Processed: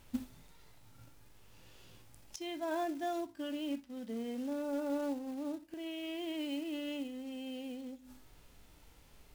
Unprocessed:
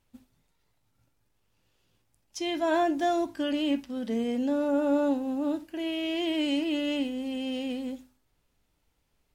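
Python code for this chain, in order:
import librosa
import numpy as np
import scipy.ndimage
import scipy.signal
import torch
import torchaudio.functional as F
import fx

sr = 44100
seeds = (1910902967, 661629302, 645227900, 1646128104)

y = fx.gate_flip(x, sr, shuts_db=-36.0, range_db=-26)
y = fx.quant_float(y, sr, bits=2)
y = fx.hpss(y, sr, part='harmonic', gain_db=7)
y = y * librosa.db_to_amplitude(8.5)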